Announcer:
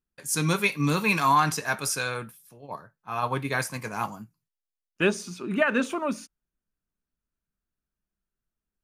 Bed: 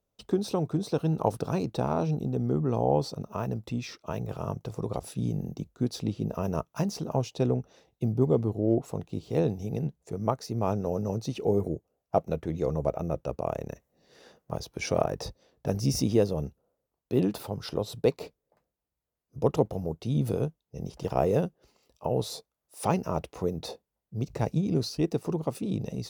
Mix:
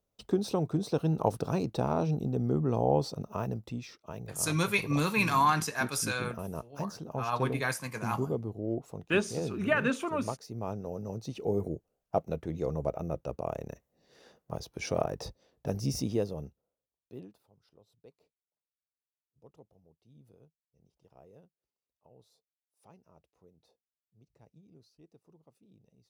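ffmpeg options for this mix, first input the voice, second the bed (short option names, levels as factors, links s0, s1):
-filter_complex "[0:a]adelay=4100,volume=0.631[s0];[1:a]volume=1.41,afade=t=out:st=3.37:d=0.55:silence=0.446684,afade=t=in:st=11.01:d=0.64:silence=0.595662,afade=t=out:st=15.68:d=1.7:silence=0.0398107[s1];[s0][s1]amix=inputs=2:normalize=0"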